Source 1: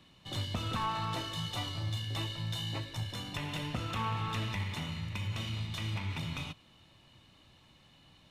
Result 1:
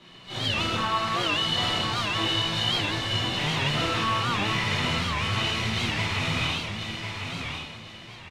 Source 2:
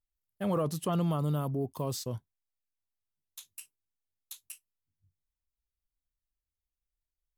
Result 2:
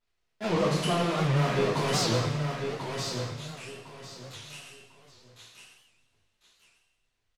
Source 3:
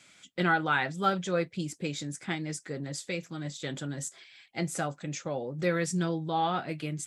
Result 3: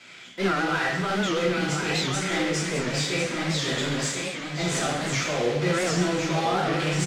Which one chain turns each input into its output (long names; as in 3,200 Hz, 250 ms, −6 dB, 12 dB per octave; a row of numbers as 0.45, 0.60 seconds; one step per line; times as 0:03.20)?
one scale factor per block 3 bits
low-pass filter 4,400 Hz 12 dB per octave
low-shelf EQ 130 Hz −10 dB
transient designer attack −11 dB, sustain +7 dB
downward compressor, threshold −36 dBFS
soft clipping −29 dBFS
repeating echo 1,049 ms, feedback 26%, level −6 dB
coupled-rooms reverb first 0.83 s, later 2.8 s, from −20 dB, DRR −8 dB
wow of a warped record 78 rpm, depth 160 cents
level +6.5 dB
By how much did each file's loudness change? +11.0, +4.5, +6.5 LU